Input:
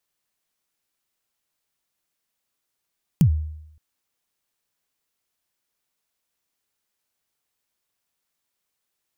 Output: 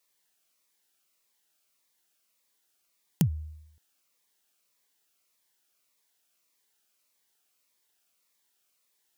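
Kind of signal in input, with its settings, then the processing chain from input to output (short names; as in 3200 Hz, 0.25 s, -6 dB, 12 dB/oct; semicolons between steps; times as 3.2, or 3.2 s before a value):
kick drum length 0.57 s, from 190 Hz, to 77 Hz, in 86 ms, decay 0.80 s, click on, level -9.5 dB
HPF 400 Hz 6 dB/oct; in parallel at -0.5 dB: compressor, threshold -35 dBFS; on the sum: cascading phaser falling 1.7 Hz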